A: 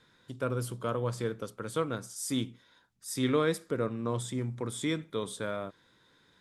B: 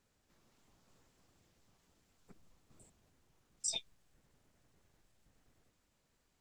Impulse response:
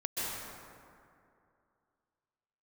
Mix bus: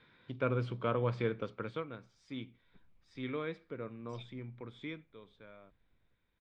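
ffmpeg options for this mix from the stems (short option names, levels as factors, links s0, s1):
-filter_complex "[0:a]volume=0.944,afade=t=out:st=1.59:d=0.24:silence=0.281838,afade=t=out:st=4.86:d=0.22:silence=0.354813,asplit=2[s0][s1];[1:a]lowshelf=f=170:g=10.5,adelay=450,volume=0.335[s2];[s1]apad=whole_len=302296[s3];[s2][s3]sidechaincompress=threshold=0.0126:ratio=8:attack=16:release=1080[s4];[s0][s4]amix=inputs=2:normalize=0,lowpass=f=3700:w=0.5412,lowpass=f=3700:w=1.3066,equalizer=f=2300:w=6.2:g=9"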